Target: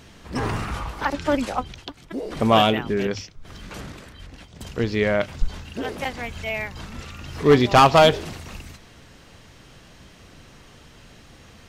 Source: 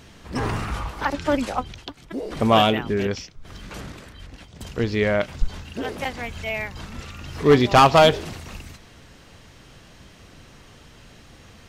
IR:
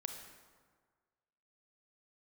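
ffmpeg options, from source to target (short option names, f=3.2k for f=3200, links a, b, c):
-af "bandreject=f=50:t=h:w=6,bandreject=f=100:t=h:w=6"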